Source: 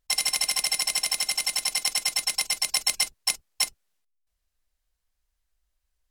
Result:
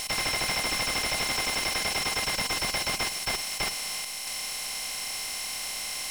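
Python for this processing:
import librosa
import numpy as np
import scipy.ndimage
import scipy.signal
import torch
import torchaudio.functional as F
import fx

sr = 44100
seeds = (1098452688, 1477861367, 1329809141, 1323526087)

y = fx.bin_compress(x, sr, power=0.2)
y = y + 10.0 ** (-20.5 / 20.0) * np.pad(y, (int(647 * sr / 1000.0), 0))[:len(y)]
y = fx.slew_limit(y, sr, full_power_hz=200.0)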